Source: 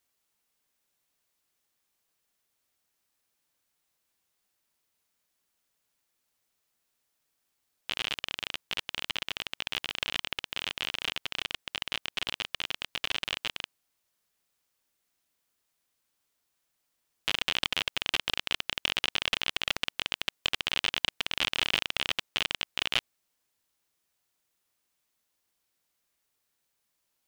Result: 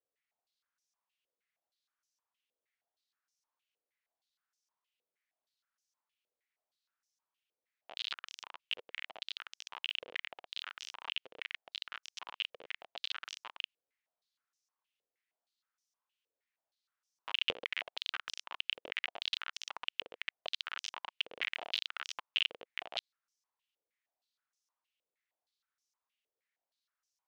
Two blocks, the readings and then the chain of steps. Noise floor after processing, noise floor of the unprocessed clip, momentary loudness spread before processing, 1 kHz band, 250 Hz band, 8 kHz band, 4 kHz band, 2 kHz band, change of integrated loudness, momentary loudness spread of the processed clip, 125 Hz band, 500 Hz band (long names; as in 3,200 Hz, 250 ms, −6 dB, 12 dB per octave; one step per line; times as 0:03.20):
below −85 dBFS, −79 dBFS, 6 LU, −7.5 dB, −16.5 dB, −10.5 dB, −8.5 dB, −8.0 dB, −8.5 dB, 10 LU, below −20 dB, −7.5 dB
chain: band-pass on a step sequencer 6.4 Hz 490–5,800 Hz
level +1 dB